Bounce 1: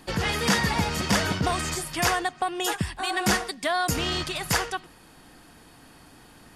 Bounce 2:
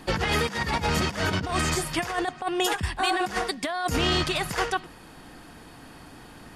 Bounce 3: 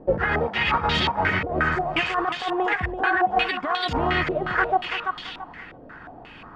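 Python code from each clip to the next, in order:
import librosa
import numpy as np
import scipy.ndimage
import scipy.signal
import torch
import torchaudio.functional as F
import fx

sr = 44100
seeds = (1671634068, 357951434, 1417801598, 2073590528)

y1 = fx.high_shelf(x, sr, hz=4300.0, db=-6.0)
y1 = fx.over_compress(y1, sr, threshold_db=-28.0, ratio=-0.5)
y1 = y1 * 10.0 ** (3.0 / 20.0)
y2 = fx.echo_thinned(y1, sr, ms=336, feedback_pct=47, hz=770.0, wet_db=-3.5)
y2 = fx.filter_held_lowpass(y2, sr, hz=5.6, low_hz=550.0, high_hz=3500.0)
y2 = y2 * 10.0 ** (-1.0 / 20.0)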